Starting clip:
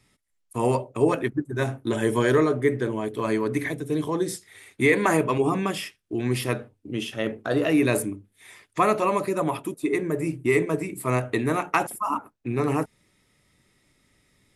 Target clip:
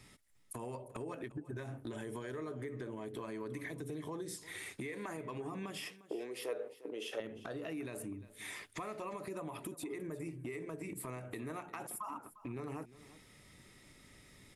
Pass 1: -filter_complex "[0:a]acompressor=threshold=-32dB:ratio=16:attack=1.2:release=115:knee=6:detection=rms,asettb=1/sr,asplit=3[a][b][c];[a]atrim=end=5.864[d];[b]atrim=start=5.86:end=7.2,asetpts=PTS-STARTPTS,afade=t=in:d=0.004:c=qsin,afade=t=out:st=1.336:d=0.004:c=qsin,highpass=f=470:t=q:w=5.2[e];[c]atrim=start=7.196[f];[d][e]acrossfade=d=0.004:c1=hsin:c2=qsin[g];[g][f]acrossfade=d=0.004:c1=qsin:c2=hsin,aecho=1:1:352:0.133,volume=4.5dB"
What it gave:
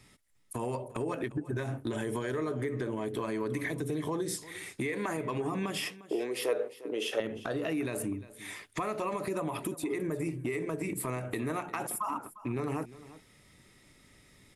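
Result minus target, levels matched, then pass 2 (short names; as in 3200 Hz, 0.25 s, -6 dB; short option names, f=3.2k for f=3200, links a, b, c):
compressor: peak gain reduction -9.5 dB
-filter_complex "[0:a]acompressor=threshold=-42dB:ratio=16:attack=1.2:release=115:knee=6:detection=rms,asettb=1/sr,asplit=3[a][b][c];[a]atrim=end=5.864[d];[b]atrim=start=5.86:end=7.2,asetpts=PTS-STARTPTS,afade=t=in:d=0.004:c=qsin,afade=t=out:st=1.336:d=0.004:c=qsin,highpass=f=470:t=q:w=5.2[e];[c]atrim=start=7.196[f];[d][e]acrossfade=d=0.004:c1=hsin:c2=qsin[g];[g][f]acrossfade=d=0.004:c1=qsin:c2=hsin,aecho=1:1:352:0.133,volume=4.5dB"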